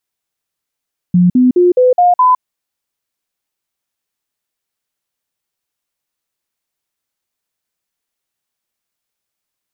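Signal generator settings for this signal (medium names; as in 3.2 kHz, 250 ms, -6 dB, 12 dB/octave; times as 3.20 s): stepped sine 178 Hz up, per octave 2, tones 6, 0.16 s, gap 0.05 s -5.5 dBFS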